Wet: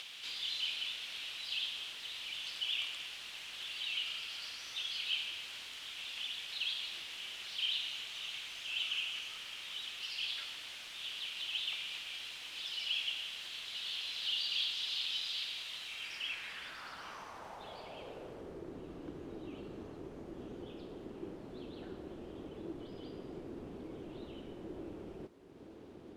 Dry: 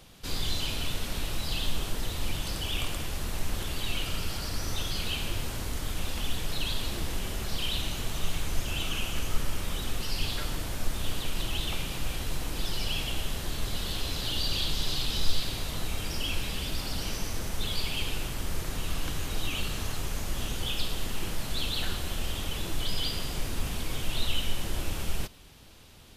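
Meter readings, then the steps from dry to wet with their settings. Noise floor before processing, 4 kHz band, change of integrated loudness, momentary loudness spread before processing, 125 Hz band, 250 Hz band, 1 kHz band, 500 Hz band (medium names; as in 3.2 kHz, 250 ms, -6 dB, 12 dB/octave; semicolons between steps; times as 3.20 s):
-36 dBFS, -3.5 dB, -6.0 dB, 4 LU, -22.5 dB, -9.5 dB, -12.5 dB, -8.5 dB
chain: upward compressor, threshold -28 dBFS; added noise white -46 dBFS; band-pass sweep 3 kHz -> 350 Hz, 15.86–18.70 s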